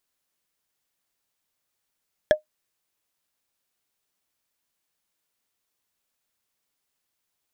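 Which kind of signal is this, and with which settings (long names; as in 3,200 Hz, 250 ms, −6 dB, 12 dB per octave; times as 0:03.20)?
struck wood, lowest mode 613 Hz, decay 0.12 s, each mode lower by 6 dB, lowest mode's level −8.5 dB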